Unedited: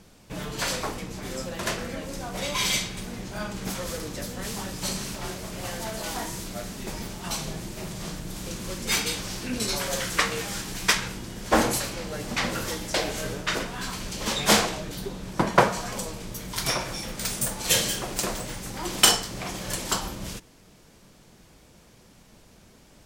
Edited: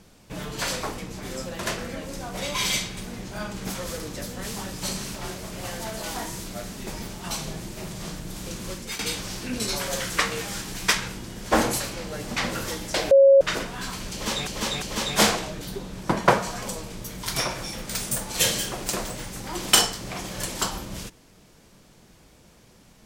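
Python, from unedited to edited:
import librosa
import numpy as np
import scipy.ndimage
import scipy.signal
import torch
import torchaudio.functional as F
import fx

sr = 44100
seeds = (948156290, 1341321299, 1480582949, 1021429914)

y = fx.edit(x, sr, fx.fade_out_to(start_s=8.71, length_s=0.28, floor_db=-14.5),
    fx.bleep(start_s=13.11, length_s=0.3, hz=548.0, db=-10.0),
    fx.repeat(start_s=14.12, length_s=0.35, count=3), tone=tone)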